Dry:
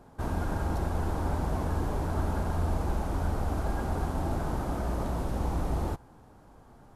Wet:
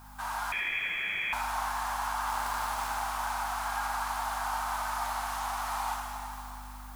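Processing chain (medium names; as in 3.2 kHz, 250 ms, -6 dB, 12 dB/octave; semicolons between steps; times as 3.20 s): steep high-pass 820 Hz 48 dB/octave; in parallel at +2 dB: peak limiter -37.5 dBFS, peak gain reduction 9 dB; on the sum: hum 50 Hz, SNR 15 dB; 2.26–2.89 s: crackle 320 per s -32 dBFS; added noise blue -61 dBFS; plate-style reverb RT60 3.2 s, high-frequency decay 0.95×, DRR -1 dB; 0.52–1.33 s: frequency inversion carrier 3.3 kHz; bit-crushed delay 83 ms, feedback 55%, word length 8-bit, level -10.5 dB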